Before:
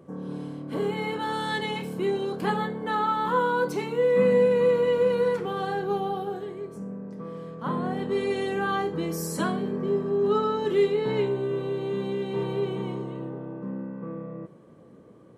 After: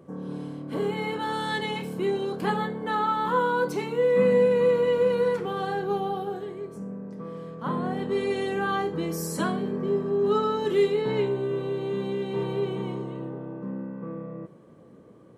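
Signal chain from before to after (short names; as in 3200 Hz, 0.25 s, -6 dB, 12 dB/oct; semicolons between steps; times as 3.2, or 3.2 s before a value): 10.27–11.02 high shelf 4800 Hz +5 dB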